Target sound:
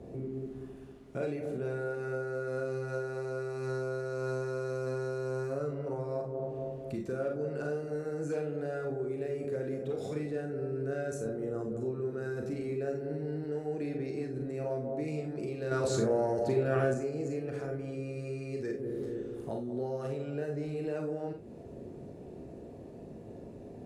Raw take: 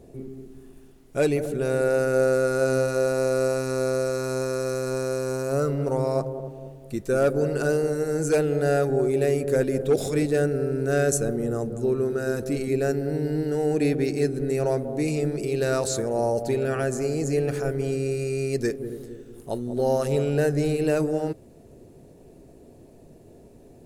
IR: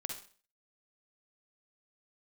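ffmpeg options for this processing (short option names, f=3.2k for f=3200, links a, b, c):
-filter_complex "[0:a]highpass=53,aemphasis=mode=reproduction:type=75fm,acompressor=threshold=-33dB:ratio=5,asplit=2[a][b];[b]alimiter=level_in=10dB:limit=-24dB:level=0:latency=1,volume=-10dB,volume=1dB[c];[a][c]amix=inputs=2:normalize=0,asettb=1/sr,asplit=3[d][e][f];[d]atrim=end=15.714[g];[e]atrim=start=15.71:end=16.94,asetpts=PTS-STARTPTS,afade=t=in:d=0.004:c=qsin,afade=t=out:st=1.226:d=0.004:c=qsin,acontrast=82[h];[f]atrim=start=16.936[i];[g][h]acrossfade=d=0.004:c1=hsin:c2=qsin[j];[j][i]acrossfade=d=0.004:c1=qsin:c2=hsin,acrossover=split=230[k][l];[l]asoftclip=type=tanh:threshold=-13.5dB[m];[k][m]amix=inputs=2:normalize=0[n];[1:a]atrim=start_sample=2205,afade=t=out:st=0.19:d=0.01,atrim=end_sample=8820,asetrate=61740,aresample=44100[o];[n][o]afir=irnorm=-1:irlink=0"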